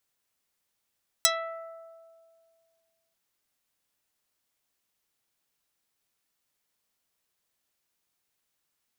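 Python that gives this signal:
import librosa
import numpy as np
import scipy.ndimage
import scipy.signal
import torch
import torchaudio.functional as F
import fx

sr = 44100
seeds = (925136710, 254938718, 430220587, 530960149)

y = fx.pluck(sr, length_s=1.89, note=76, decay_s=2.15, pick=0.29, brightness='dark')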